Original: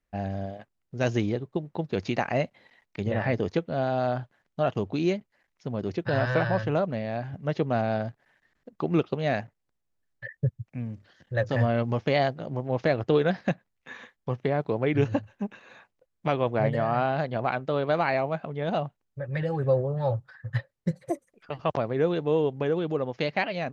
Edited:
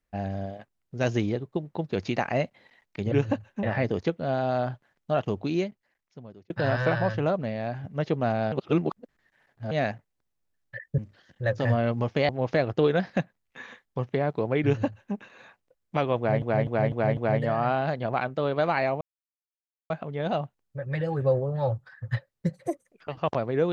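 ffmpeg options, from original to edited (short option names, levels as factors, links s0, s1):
-filter_complex "[0:a]asplit=13[s0][s1][s2][s3][s4][s5][s6][s7][s8][s9][s10][s11][s12];[s0]atrim=end=3.122[s13];[s1]atrim=start=14.948:end=15.462[s14];[s2]atrim=start=3.118:end=5.99,asetpts=PTS-STARTPTS,afade=t=out:st=1.772:d=1.1[s15];[s3]atrim=start=5.99:end=8.012,asetpts=PTS-STARTPTS,afade=t=in:d=0.004:c=hsin[s16];[s4]atrim=start=8.008:end=9.202,asetpts=PTS-STARTPTS,areverse[s17];[s5]atrim=start=9.198:end=10.472[s18];[s6]atrim=start=10.888:end=12.202[s19];[s7]atrim=start=12.598:end=16.732[s20];[s8]atrim=start=16.478:end=16.732[s21];[s9]atrim=start=16.478:end=16.732[s22];[s10]atrim=start=16.478:end=16.732[s23];[s11]atrim=start=16.478:end=18.32,asetpts=PTS-STARTPTS,afade=t=out:st=1.838:d=0.004:c=hsin,apad=pad_dur=0.89[s24];[s12]atrim=start=18.32,asetpts=PTS-STARTPTS,afade=t=in:d=0.004:c=hsin[s25];[s13][s14]acrossfade=d=0.004:c1=hsin:c2=hsin[s26];[s15][s16]concat=n=2:v=0:a=1[s27];[s26][s27]acrossfade=d=0.004:c1=hsin:c2=hsin[s28];[s28][s17]acrossfade=d=0.004:c1=hsin:c2=hsin[s29];[s29][s18]acrossfade=d=0.004:c1=hsin:c2=hsin[s30];[s30][s19]acrossfade=d=0.004:c1=hsin:c2=hsin[s31];[s31][s20]acrossfade=d=0.004:c1=hsin:c2=hsin[s32];[s32][s21]acrossfade=d=0.004:c1=hsin:c2=hsin[s33];[s33][s22]acrossfade=d=0.004:c1=hsin:c2=hsin[s34];[s34][s23]acrossfade=d=0.004:c1=hsin:c2=hsin[s35];[s24][s25]concat=n=2:v=0:a=1[s36];[s35][s36]acrossfade=d=0.004:c1=hsin:c2=hsin"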